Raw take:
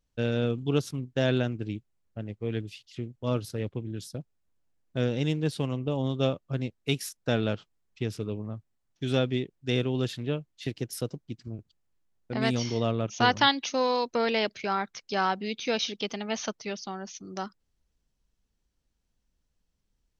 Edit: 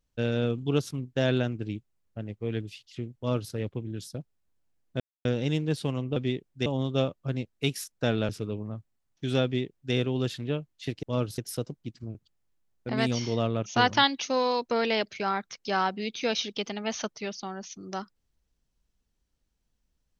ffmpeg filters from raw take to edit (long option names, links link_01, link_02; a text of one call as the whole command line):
ffmpeg -i in.wav -filter_complex "[0:a]asplit=7[link_01][link_02][link_03][link_04][link_05][link_06][link_07];[link_01]atrim=end=5,asetpts=PTS-STARTPTS,afade=type=out:start_time=4.996:duration=0.004:curve=hsin,apad=pad_dur=0.25[link_08];[link_02]atrim=start=5:end=5.912,asetpts=PTS-STARTPTS,afade=type=in:duration=0.004:curve=hsin[link_09];[link_03]atrim=start=9.228:end=9.732[link_10];[link_04]atrim=start=5.908:end=7.542[link_11];[link_05]atrim=start=8.078:end=10.822[link_12];[link_06]atrim=start=3.168:end=3.522[link_13];[link_07]atrim=start=10.818[link_14];[link_08][link_09]concat=n=2:v=0:a=1[link_15];[link_15][link_10]acrossfade=duration=0.004:curve1=hsin:curve2=hsin[link_16];[link_16][link_11]acrossfade=duration=0.004:curve1=hsin:curve2=hsin[link_17];[link_17][link_12]acrossfade=duration=0.004:curve1=hsin:curve2=hsin[link_18];[link_18][link_13]acrossfade=duration=0.004:curve1=hsin:curve2=hsin[link_19];[link_19][link_14]acrossfade=duration=0.004:curve1=hsin:curve2=hsin" out.wav